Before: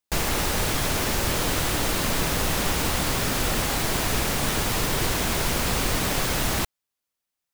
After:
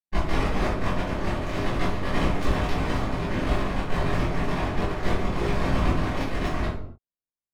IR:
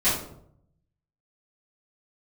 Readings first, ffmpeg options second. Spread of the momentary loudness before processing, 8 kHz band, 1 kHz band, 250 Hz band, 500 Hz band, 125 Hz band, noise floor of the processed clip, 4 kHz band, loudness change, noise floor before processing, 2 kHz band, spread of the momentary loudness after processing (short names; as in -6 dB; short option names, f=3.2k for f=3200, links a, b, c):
0 LU, -20.5 dB, -1.0 dB, +1.5 dB, 0.0 dB, +1.5 dB, under -85 dBFS, -11.0 dB, -3.5 dB, -85 dBFS, -4.5 dB, 3 LU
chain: -filter_complex "[0:a]flanger=delay=19:depth=3.5:speed=0.34,aeval=exprs='0.2*(cos(1*acos(clip(val(0)/0.2,-1,1)))-cos(1*PI/2))+0.0562*(cos(3*acos(clip(val(0)/0.2,-1,1)))-cos(3*PI/2))+0.0398*(cos(6*acos(clip(val(0)/0.2,-1,1)))-cos(6*PI/2))+0.02*(cos(8*acos(clip(val(0)/0.2,-1,1)))-cos(8*PI/2))':c=same,adynamicsmooth=sensitivity=2.5:basefreq=1k[a];[1:a]atrim=start_sample=2205,afade=t=out:st=0.36:d=0.01,atrim=end_sample=16317[b];[a][b]afir=irnorm=-1:irlink=0,volume=-5dB"